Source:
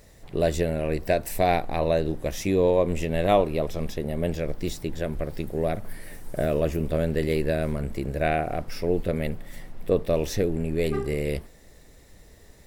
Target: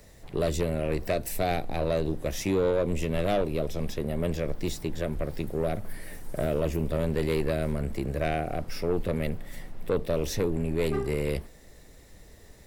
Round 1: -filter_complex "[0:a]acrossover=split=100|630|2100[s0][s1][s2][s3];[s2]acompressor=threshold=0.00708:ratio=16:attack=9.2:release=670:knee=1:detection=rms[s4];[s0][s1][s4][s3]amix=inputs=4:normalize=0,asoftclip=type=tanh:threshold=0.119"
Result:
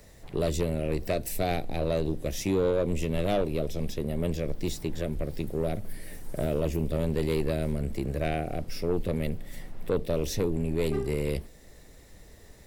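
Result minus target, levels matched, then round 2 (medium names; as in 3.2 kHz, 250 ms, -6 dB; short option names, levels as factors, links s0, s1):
compression: peak gain reduction +11.5 dB
-filter_complex "[0:a]acrossover=split=100|630|2100[s0][s1][s2][s3];[s2]acompressor=threshold=0.0282:ratio=16:attack=9.2:release=670:knee=1:detection=rms[s4];[s0][s1][s4][s3]amix=inputs=4:normalize=0,asoftclip=type=tanh:threshold=0.119"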